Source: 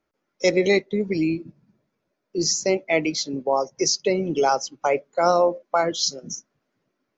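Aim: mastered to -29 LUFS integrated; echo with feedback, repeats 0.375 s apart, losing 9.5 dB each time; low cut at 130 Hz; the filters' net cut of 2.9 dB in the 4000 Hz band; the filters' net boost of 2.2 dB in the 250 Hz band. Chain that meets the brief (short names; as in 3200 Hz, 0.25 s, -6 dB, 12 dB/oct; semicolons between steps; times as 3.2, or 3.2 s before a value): HPF 130 Hz; bell 250 Hz +4 dB; bell 4000 Hz -4 dB; feedback echo 0.375 s, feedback 33%, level -9.5 dB; gain -7 dB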